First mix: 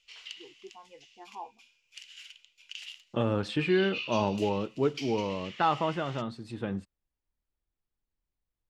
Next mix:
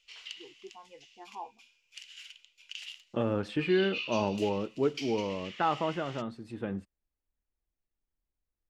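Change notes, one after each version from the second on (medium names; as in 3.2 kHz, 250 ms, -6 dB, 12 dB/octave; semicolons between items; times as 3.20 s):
second voice: add graphic EQ 125/1000/4000/8000 Hz -5/-3/-7/-5 dB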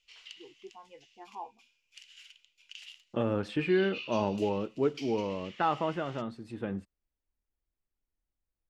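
background -5.0 dB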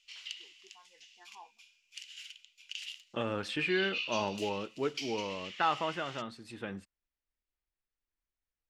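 first voice: add four-pole ladder low-pass 1.9 kHz, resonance 65%; master: add tilt shelf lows -7.5 dB, about 1.1 kHz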